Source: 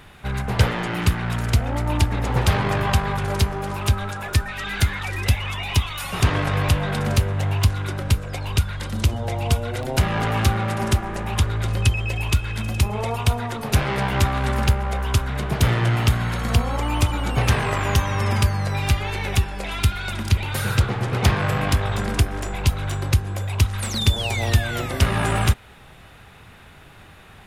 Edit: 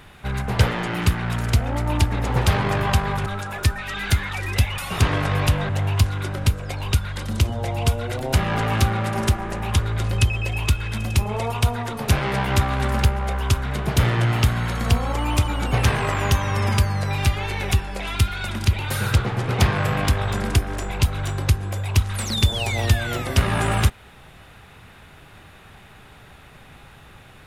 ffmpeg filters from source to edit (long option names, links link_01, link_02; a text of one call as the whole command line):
ffmpeg -i in.wav -filter_complex "[0:a]asplit=4[link_01][link_02][link_03][link_04];[link_01]atrim=end=3.262[link_05];[link_02]atrim=start=3.958:end=5.482[link_06];[link_03]atrim=start=5.998:end=6.912[link_07];[link_04]atrim=start=7.328[link_08];[link_05][link_06]acrossfade=duration=0.004:curve1=hsin:curve2=hsin[link_09];[link_09][link_07]acrossfade=duration=0.004:curve1=hsin:curve2=hsin[link_10];[link_10][link_08]acrossfade=duration=0.004:curve1=hsin:curve2=hsin" out.wav